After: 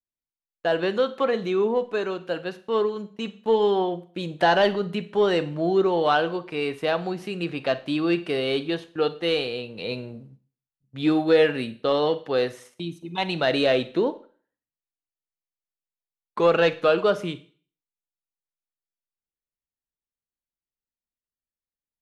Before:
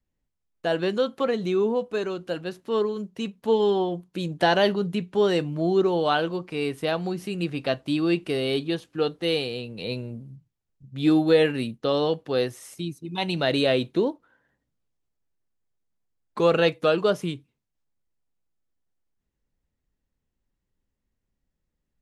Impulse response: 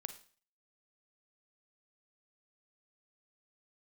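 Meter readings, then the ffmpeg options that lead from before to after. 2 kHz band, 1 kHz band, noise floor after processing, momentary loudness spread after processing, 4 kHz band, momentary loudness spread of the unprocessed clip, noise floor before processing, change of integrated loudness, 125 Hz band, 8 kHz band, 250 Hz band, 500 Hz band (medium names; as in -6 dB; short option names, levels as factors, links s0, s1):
+2.5 dB, +3.0 dB, under -85 dBFS, 12 LU, 0.0 dB, 12 LU, -81 dBFS, +1.0 dB, -3.0 dB, no reading, -1.0 dB, +1.0 dB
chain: -filter_complex "[0:a]agate=range=0.1:threshold=0.00794:ratio=16:detection=peak,asplit=2[s0][s1];[s1]highpass=f=720:p=1,volume=2.82,asoftclip=type=tanh:threshold=0.422[s2];[s0][s2]amix=inputs=2:normalize=0,lowpass=f=2200:p=1,volume=0.501,asplit=2[s3][s4];[1:a]atrim=start_sample=2205[s5];[s4][s5]afir=irnorm=-1:irlink=0,volume=2.11[s6];[s3][s6]amix=inputs=2:normalize=0,volume=0.447"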